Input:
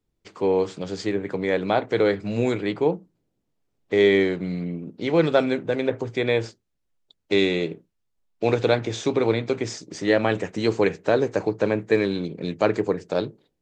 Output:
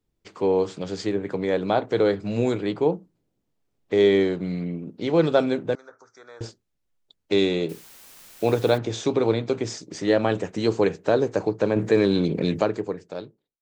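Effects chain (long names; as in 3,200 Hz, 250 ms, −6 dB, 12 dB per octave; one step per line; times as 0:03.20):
fade-out on the ending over 1.39 s
dynamic equaliser 2,100 Hz, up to −7 dB, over −42 dBFS, Q 1.9
0:05.75–0:06.41: pair of resonant band-passes 2,800 Hz, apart 2.1 octaves
0:07.69–0:08.78: bit-depth reduction 8 bits, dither triangular
0:11.76–0:12.64: envelope flattener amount 50%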